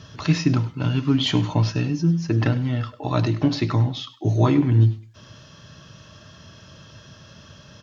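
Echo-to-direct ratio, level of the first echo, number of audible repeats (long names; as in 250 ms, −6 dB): −17.5 dB, −17.5 dB, 2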